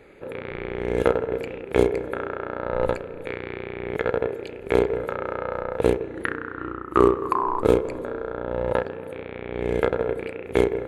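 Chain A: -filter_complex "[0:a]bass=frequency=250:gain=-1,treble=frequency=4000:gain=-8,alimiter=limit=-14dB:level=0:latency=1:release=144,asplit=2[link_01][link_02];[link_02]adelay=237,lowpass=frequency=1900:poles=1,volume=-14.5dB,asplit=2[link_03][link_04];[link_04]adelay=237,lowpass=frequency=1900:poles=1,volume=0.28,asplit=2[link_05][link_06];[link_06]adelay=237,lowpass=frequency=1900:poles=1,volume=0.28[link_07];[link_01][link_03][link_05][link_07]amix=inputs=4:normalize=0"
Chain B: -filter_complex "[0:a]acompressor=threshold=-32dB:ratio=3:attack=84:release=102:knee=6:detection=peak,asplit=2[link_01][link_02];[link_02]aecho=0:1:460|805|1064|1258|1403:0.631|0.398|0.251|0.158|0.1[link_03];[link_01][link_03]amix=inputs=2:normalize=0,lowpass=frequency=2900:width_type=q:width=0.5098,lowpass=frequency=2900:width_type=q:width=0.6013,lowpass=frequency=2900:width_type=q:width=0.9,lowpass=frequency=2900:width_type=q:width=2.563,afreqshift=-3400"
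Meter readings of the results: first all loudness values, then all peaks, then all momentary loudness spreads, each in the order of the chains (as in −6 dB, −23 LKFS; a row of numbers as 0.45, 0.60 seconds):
−29.5, −24.5 LKFS; −13.0, −6.5 dBFS; 7, 4 LU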